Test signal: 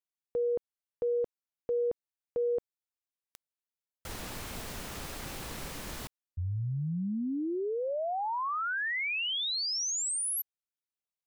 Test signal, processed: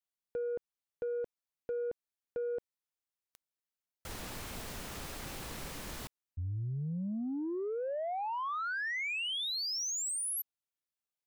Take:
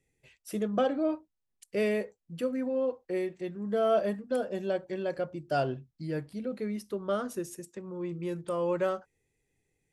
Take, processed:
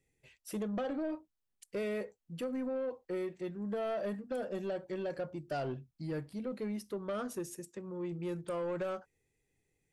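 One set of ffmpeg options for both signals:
-af "acompressor=threshold=-33dB:ratio=4:attack=82:release=42:knee=1:detection=rms,asoftclip=type=tanh:threshold=-28dB,volume=-2dB"

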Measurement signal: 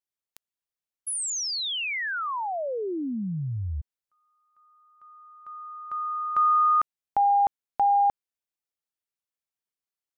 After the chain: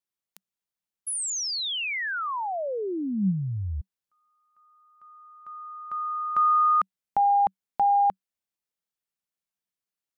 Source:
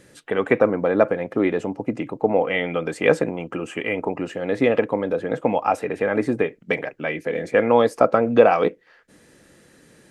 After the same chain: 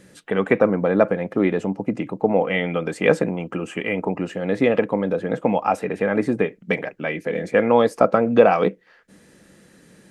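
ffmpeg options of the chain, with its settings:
-af "equalizer=f=190:t=o:w=0.28:g=9"

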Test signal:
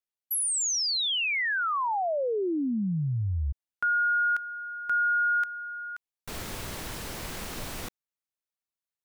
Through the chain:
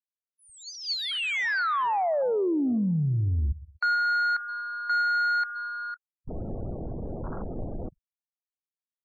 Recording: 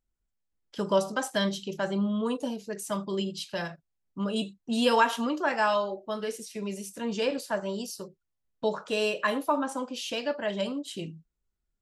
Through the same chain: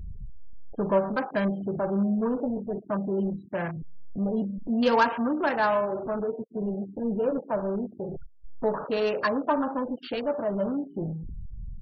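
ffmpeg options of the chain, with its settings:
-filter_complex "[0:a]aeval=exprs='val(0)+0.5*0.0376*sgn(val(0))':c=same,asplit=2[a][b];[b]adelay=122,lowpass=f=4.5k:p=1,volume=-17.5dB,asplit=2[c][d];[d]adelay=122,lowpass=f=4.5k:p=1,volume=0.34,asplit=2[e][f];[f]adelay=122,lowpass=f=4.5k:p=1,volume=0.34[g];[c][e][g]amix=inputs=3:normalize=0[h];[a][h]amix=inputs=2:normalize=0,afwtdn=0.0316,adynamicsmooth=sensitivity=1:basefreq=1.7k,afftfilt=real='re*gte(hypot(re,im),0.00562)':imag='im*gte(hypot(re,im),0.00562)':win_size=1024:overlap=0.75,equalizer=f=4.5k:w=7.7:g=11.5"

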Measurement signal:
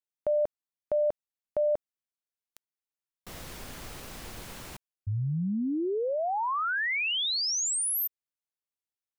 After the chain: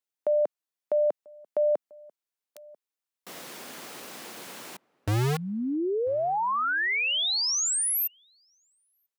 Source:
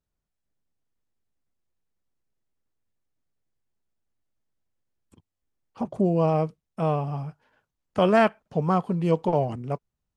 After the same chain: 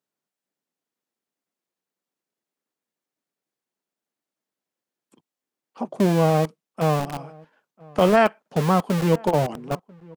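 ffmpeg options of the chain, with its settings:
-filter_complex "[0:a]acrossover=split=190[a][b];[a]acrusher=bits=4:mix=0:aa=0.000001[c];[c][b]amix=inputs=2:normalize=0,asplit=2[d][e];[e]adelay=991.3,volume=-25dB,highshelf=f=4k:g=-22.3[f];[d][f]amix=inputs=2:normalize=0,volume=2.5dB"

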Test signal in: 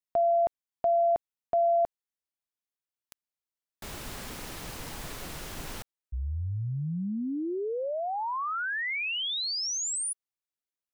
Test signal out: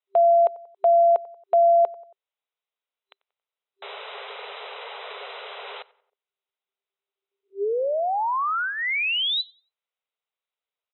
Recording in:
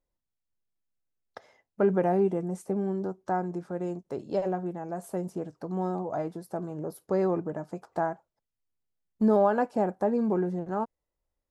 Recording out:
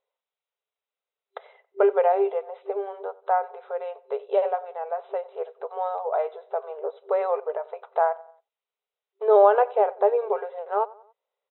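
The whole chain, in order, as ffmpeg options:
-filter_complex "[0:a]afftfilt=real='re*between(b*sr/4096,390,4000)':imag='im*between(b*sr/4096,390,4000)':win_size=4096:overlap=0.75,equalizer=f=1.7k:t=o:w=0.2:g=-8,asplit=2[a][b];[b]adelay=92,lowpass=f=2.4k:p=1,volume=-21dB,asplit=2[c][d];[d]adelay=92,lowpass=f=2.4k:p=1,volume=0.47,asplit=2[e][f];[f]adelay=92,lowpass=f=2.4k:p=1,volume=0.47[g];[a][c][e][g]amix=inputs=4:normalize=0,volume=7.5dB"

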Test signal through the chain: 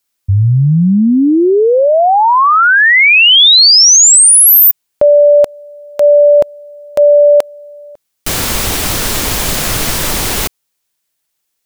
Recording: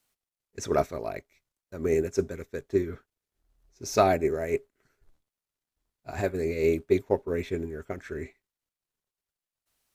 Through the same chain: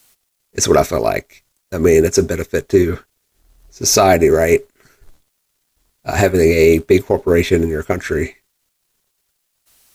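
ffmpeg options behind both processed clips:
-af "highshelf=f=3.1k:g=6.5,alimiter=level_in=18dB:limit=-1dB:release=50:level=0:latency=1,volume=-1dB"

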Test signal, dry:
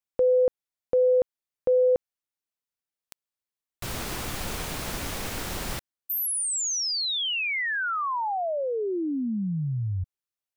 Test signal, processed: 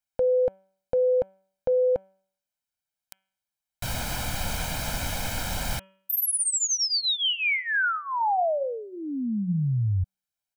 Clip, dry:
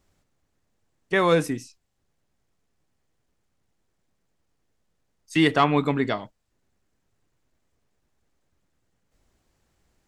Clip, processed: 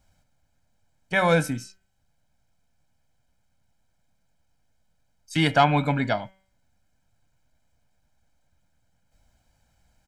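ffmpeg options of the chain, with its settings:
-af "aecho=1:1:1.3:0.78,bandreject=f=191.1:t=h:w=4,bandreject=f=382.2:t=h:w=4,bandreject=f=573.3:t=h:w=4,bandreject=f=764.4:t=h:w=4,bandreject=f=955.5:t=h:w=4,bandreject=f=1.1466k:t=h:w=4,bandreject=f=1.3377k:t=h:w=4,bandreject=f=1.5288k:t=h:w=4,bandreject=f=1.7199k:t=h:w=4,bandreject=f=1.911k:t=h:w=4,bandreject=f=2.1021k:t=h:w=4,bandreject=f=2.2932k:t=h:w=4,bandreject=f=2.4843k:t=h:w=4,bandreject=f=2.6754k:t=h:w=4,bandreject=f=2.8665k:t=h:w=4,bandreject=f=3.0576k:t=h:w=4,bandreject=f=3.2487k:t=h:w=4"

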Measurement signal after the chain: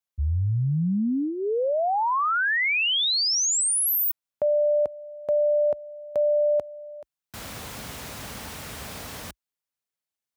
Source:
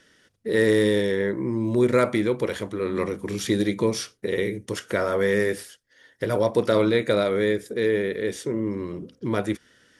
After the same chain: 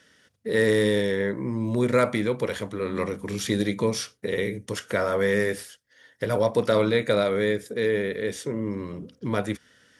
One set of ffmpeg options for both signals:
-af "highpass=f=52:w=0.5412,highpass=f=52:w=1.3066,equalizer=f=350:t=o:w=0.27:g=-8.5"

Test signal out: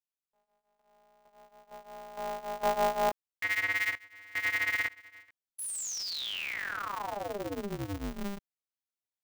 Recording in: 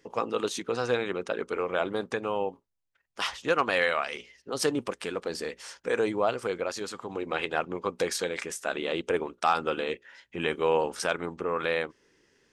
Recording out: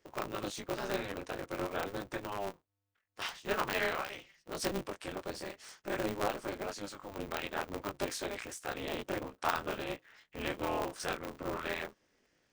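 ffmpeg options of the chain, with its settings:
-af "flanger=delay=17.5:depth=5.9:speed=0.47,aeval=exprs='val(0)*sgn(sin(2*PI*100*n/s))':c=same,volume=-5dB"

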